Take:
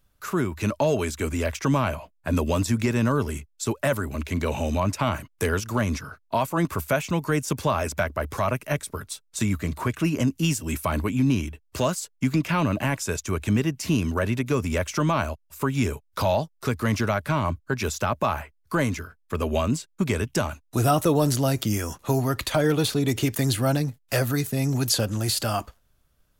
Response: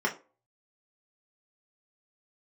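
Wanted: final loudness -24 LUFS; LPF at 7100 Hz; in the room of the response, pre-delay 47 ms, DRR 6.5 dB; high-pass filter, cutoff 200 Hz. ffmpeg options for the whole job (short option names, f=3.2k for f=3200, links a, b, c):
-filter_complex "[0:a]highpass=200,lowpass=7.1k,asplit=2[a][b];[1:a]atrim=start_sample=2205,adelay=47[c];[b][c]afir=irnorm=-1:irlink=0,volume=-16.5dB[d];[a][d]amix=inputs=2:normalize=0,volume=2.5dB"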